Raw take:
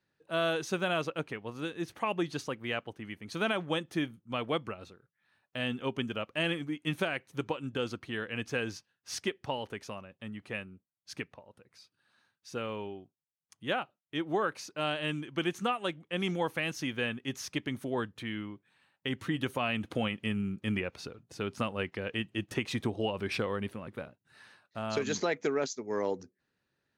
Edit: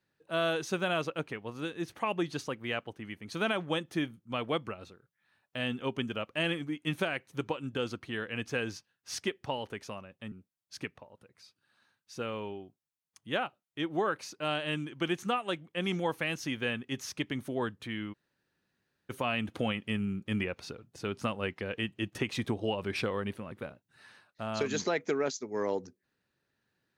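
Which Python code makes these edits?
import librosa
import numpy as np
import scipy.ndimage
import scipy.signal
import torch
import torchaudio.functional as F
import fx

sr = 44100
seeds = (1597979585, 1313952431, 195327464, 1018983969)

y = fx.edit(x, sr, fx.cut(start_s=10.32, length_s=0.36),
    fx.room_tone_fill(start_s=18.49, length_s=0.97, crossfade_s=0.02), tone=tone)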